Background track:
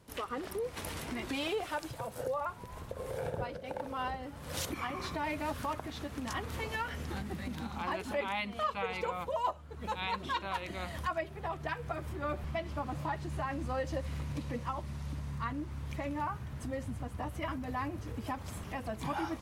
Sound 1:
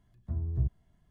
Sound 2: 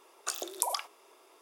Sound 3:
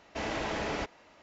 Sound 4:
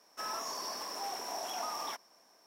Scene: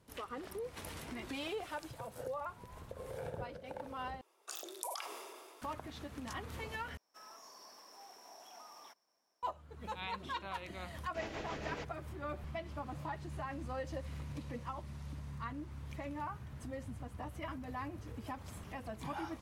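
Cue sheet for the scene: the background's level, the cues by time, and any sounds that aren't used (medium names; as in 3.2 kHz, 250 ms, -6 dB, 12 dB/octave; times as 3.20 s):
background track -6 dB
4.21 s: replace with 2 -13 dB + decay stretcher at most 26 dB/s
6.97 s: replace with 4 -16.5 dB
10.99 s: add 3 -8 dB + rotary cabinet horn 7 Hz
not used: 1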